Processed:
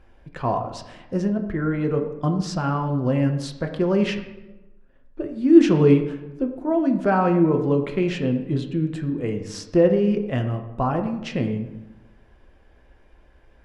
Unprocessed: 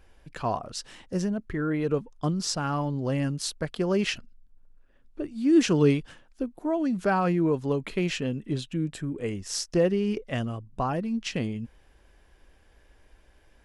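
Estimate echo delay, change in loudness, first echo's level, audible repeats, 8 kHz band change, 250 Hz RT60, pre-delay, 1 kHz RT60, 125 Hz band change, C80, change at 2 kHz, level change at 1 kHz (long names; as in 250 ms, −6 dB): no echo audible, +6.0 dB, no echo audible, no echo audible, can't be measured, 1.2 s, 3 ms, 0.95 s, +6.0 dB, 10.5 dB, +1.5 dB, +5.0 dB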